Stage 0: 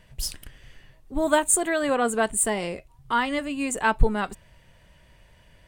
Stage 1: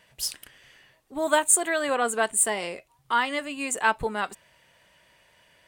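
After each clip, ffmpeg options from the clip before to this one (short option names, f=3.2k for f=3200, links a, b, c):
-af "highpass=f=640:p=1,volume=1.5dB"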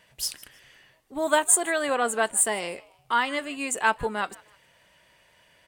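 -filter_complex "[0:a]asplit=3[a][b][c];[b]adelay=155,afreqshift=110,volume=-23.5dB[d];[c]adelay=310,afreqshift=220,volume=-32.1dB[e];[a][d][e]amix=inputs=3:normalize=0"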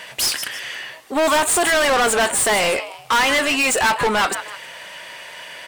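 -filter_complex "[0:a]asplit=2[a][b];[b]highpass=f=720:p=1,volume=36dB,asoftclip=type=tanh:threshold=-5dB[c];[a][c]amix=inputs=2:normalize=0,lowpass=f=7.3k:p=1,volume=-6dB,volume=-4.5dB"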